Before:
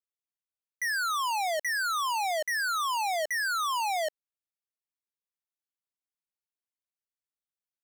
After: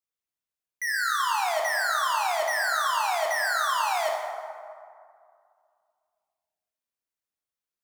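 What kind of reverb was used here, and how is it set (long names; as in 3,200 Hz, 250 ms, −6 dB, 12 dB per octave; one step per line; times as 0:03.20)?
dense smooth reverb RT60 2.3 s, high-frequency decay 0.45×, DRR −0.5 dB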